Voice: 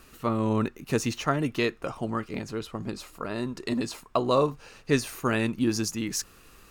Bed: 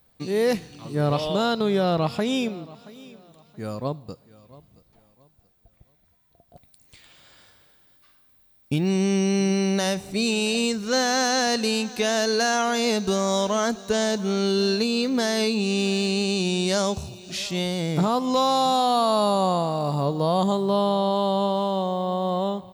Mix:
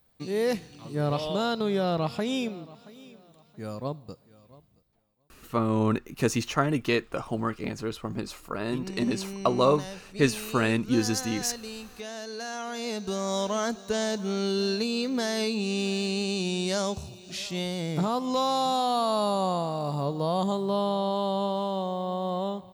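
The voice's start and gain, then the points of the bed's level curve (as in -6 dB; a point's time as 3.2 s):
5.30 s, +1.0 dB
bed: 4.51 s -4.5 dB
5.07 s -15.5 dB
12.28 s -15.5 dB
13.42 s -5 dB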